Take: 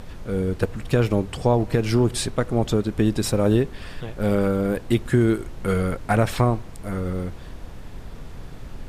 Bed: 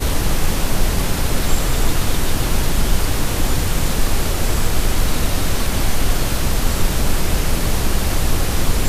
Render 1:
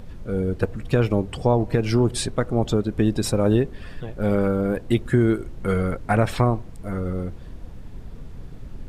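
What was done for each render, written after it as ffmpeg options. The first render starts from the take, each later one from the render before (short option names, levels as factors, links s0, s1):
-af "afftdn=nr=8:nf=-39"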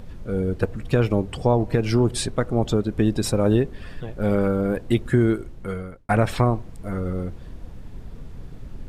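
-filter_complex "[0:a]asplit=2[s0][s1];[s0]atrim=end=6.09,asetpts=PTS-STARTPTS,afade=t=out:st=5.24:d=0.85[s2];[s1]atrim=start=6.09,asetpts=PTS-STARTPTS,afade=t=in:d=0.004:c=hsin[s3];[s2][s3]concat=n=2:v=0:a=1"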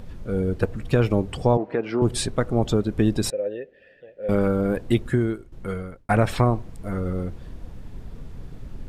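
-filter_complex "[0:a]asettb=1/sr,asplit=3[s0][s1][s2];[s0]atrim=end=1.574[s3];[s1]atrim=start=1.57:end=2.02,asetpts=PTS-STARTPTS,afade=t=in:d=0.004:c=qsin,afade=t=out:st=0.446:d=0.004:c=qsin,highpass=310,lowpass=2100[s4];[s2]atrim=start=2.016[s5];[s3][s4]acrossfade=d=0.004:c1=hsin:c2=qsin[s6];[s6][s5]acrossfade=d=0.004:c1=qsin:c2=hsin,asettb=1/sr,asplit=3[s7][s8][s9];[s7]atrim=end=3.304[s10];[s8]atrim=start=3.3:end=4.29,asetpts=PTS-STARTPTS,afade=t=in:d=0.004:c=qsin,afade=t=out:st=0.986:d=0.004:c=qsin,asplit=3[s11][s12][s13];[s11]bandpass=f=530:t=q:w=8,volume=1[s14];[s12]bandpass=f=1840:t=q:w=8,volume=0.501[s15];[s13]bandpass=f=2480:t=q:w=8,volume=0.355[s16];[s14][s15][s16]amix=inputs=3:normalize=0[s17];[s9]atrim=start=4.286[s18];[s10][s17]acrossfade=d=0.004:c1=hsin:c2=qsin[s19];[s19][s18]acrossfade=d=0.004:c1=qsin:c2=hsin,asplit=2[s20][s21];[s20]atrim=end=5.52,asetpts=PTS-STARTPTS,afade=t=out:st=4.97:d=0.55:silence=0.188365[s22];[s21]atrim=start=5.52,asetpts=PTS-STARTPTS,afade=t=in:d=0.004:c=hsin:silence=0.188365[s23];[s22][s23]concat=n=2:v=0:a=1"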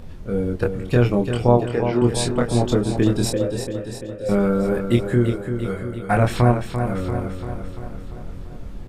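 -filter_complex "[0:a]asplit=2[s0][s1];[s1]adelay=25,volume=0.708[s2];[s0][s2]amix=inputs=2:normalize=0,aecho=1:1:342|684|1026|1368|1710|2052|2394:0.398|0.235|0.139|0.0818|0.0482|0.0285|0.0168"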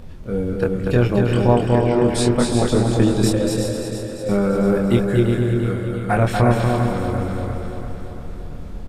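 -af "aecho=1:1:240|384|470.4|522.2|553.3:0.631|0.398|0.251|0.158|0.1"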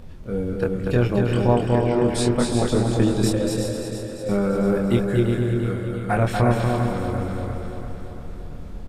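-af "volume=0.708"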